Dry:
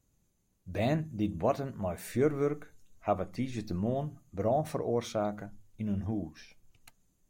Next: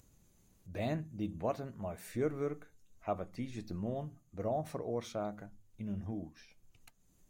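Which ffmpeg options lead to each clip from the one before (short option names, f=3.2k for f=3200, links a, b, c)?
-af "acompressor=mode=upward:threshold=-46dB:ratio=2.5,volume=-6.5dB"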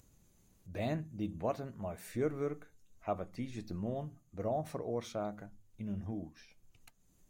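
-af anull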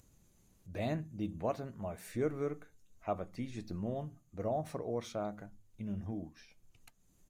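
-af "aresample=32000,aresample=44100"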